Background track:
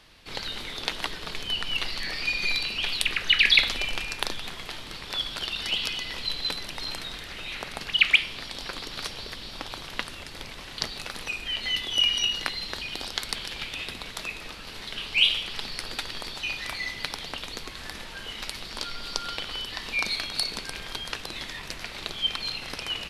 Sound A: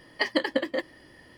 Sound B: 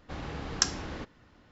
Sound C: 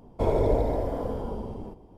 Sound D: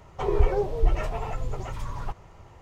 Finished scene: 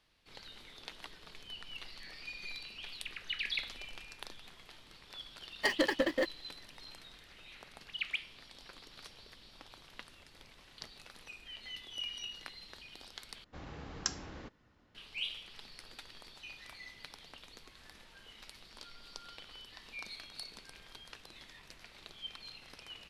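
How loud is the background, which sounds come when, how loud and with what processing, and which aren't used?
background track −18 dB
0:05.44: mix in A −12 dB + leveller curve on the samples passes 3
0:13.44: overwrite with B −9 dB
not used: C, D

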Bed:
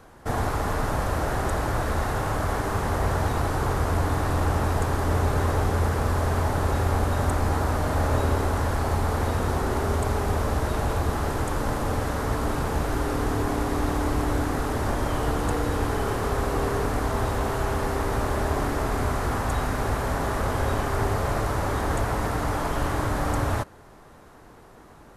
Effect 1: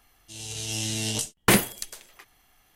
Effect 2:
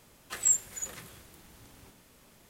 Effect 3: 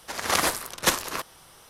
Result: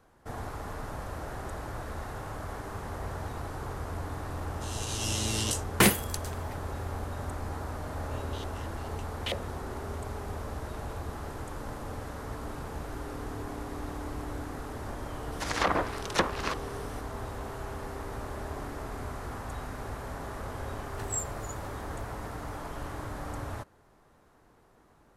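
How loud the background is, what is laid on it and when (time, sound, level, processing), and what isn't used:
bed −12.5 dB
0:04.32: mix in 1 −2.5 dB
0:07.78: mix in 1 −4.5 dB + band-pass on a step sequencer 9.1 Hz 290–3,300 Hz
0:15.32: mix in 3 −0.5 dB + treble cut that deepens with the level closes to 1,200 Hz, closed at −19 dBFS
0:20.67: mix in 2 −9.5 dB

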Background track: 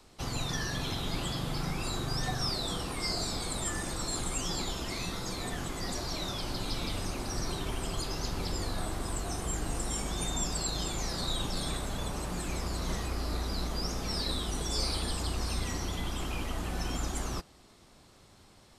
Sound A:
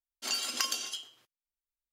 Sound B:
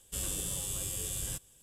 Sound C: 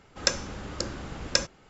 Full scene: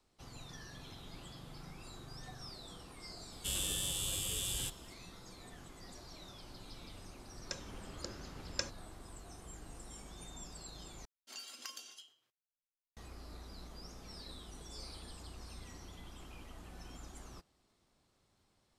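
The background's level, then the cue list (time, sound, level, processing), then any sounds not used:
background track −17 dB
0:03.32: mix in B −3.5 dB + parametric band 3,300 Hz +11 dB 0.89 octaves
0:07.24: mix in C −13 dB + fade in at the beginning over 0.55 s
0:11.05: overwrite with A −16 dB

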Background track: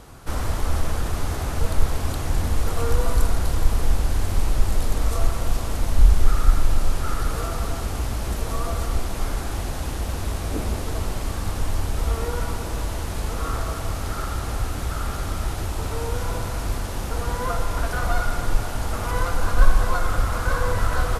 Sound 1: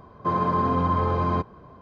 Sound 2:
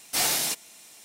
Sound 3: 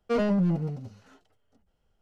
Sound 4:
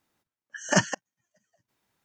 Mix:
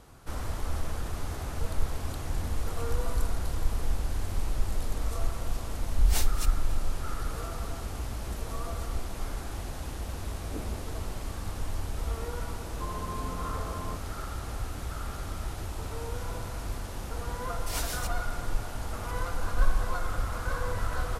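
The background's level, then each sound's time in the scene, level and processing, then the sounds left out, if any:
background track −9 dB
0:05.91: mix in 2 −5 dB + tremolo with a sine in dB 3.7 Hz, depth 26 dB
0:12.55: mix in 1 −15.5 dB
0:17.53: mix in 2 −9 dB + rotating-speaker cabinet horn 7 Hz
not used: 3, 4

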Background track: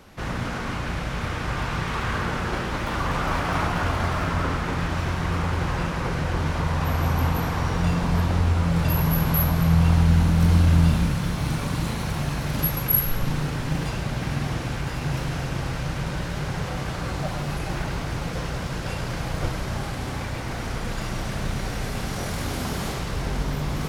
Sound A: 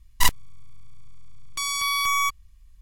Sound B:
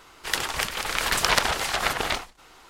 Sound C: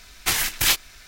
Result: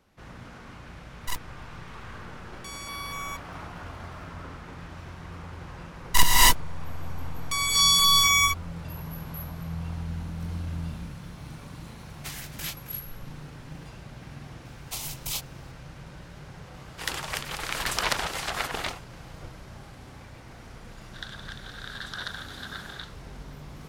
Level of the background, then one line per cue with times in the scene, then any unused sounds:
background track −16 dB
0:01.07: mix in A −13.5 dB
0:05.94: mix in A −0.5 dB + reverb whose tail is shaped and stops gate 310 ms rising, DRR −7 dB
0:11.98: mix in C −17 dB + single-tap delay 268 ms −14.5 dB
0:14.65: mix in C −11 dB + phaser with its sweep stopped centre 680 Hz, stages 4
0:16.74: mix in B −5.5 dB
0:20.89: mix in B −6.5 dB + pair of resonant band-passes 2,400 Hz, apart 1.2 octaves

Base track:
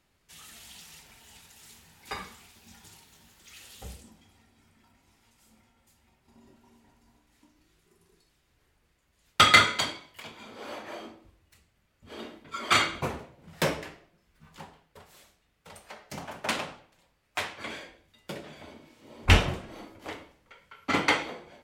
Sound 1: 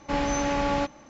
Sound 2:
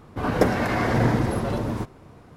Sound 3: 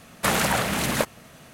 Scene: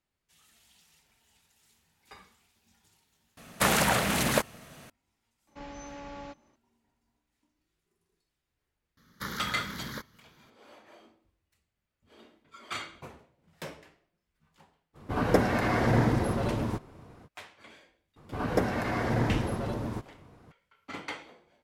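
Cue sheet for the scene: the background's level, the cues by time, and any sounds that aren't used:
base track −14.5 dB
0:03.37: overwrite with 3 −2 dB
0:05.47: mix in 1 −17.5 dB
0:08.97: mix in 3 −12 dB + phaser with its sweep stopped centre 2,600 Hz, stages 6
0:14.93: mix in 2 −3.5 dB, fades 0.05 s
0:18.16: mix in 2 −7 dB

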